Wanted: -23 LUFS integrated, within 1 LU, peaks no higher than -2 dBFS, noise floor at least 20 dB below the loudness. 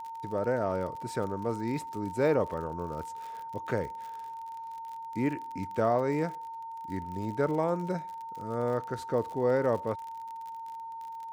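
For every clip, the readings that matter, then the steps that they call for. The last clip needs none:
tick rate 48 per s; steady tone 910 Hz; tone level -38 dBFS; loudness -32.5 LUFS; peak level -14.0 dBFS; loudness target -23.0 LUFS
-> de-click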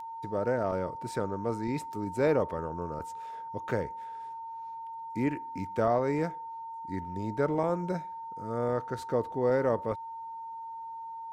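tick rate 0.26 per s; steady tone 910 Hz; tone level -38 dBFS
-> band-stop 910 Hz, Q 30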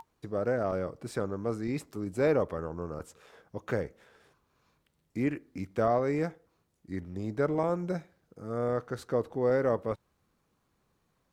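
steady tone not found; loudness -32.0 LUFS; peak level -14.5 dBFS; loudness target -23.0 LUFS
-> trim +9 dB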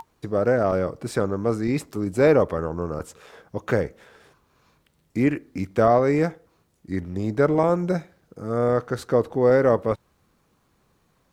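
loudness -23.0 LUFS; peak level -5.5 dBFS; noise floor -66 dBFS

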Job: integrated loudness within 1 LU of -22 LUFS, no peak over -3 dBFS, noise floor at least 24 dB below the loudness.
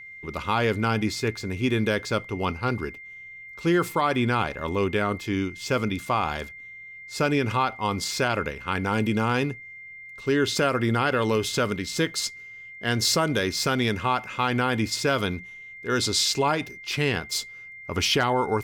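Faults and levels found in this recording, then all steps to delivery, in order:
steady tone 2.1 kHz; tone level -40 dBFS; loudness -25.0 LUFS; peak level -10.0 dBFS; loudness target -22.0 LUFS
-> band-stop 2.1 kHz, Q 30; trim +3 dB

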